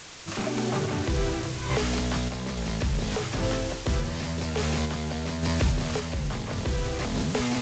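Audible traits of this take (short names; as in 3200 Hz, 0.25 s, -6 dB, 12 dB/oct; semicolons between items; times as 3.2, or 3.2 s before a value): a quantiser's noise floor 6-bit, dither triangular; random-step tremolo; G.722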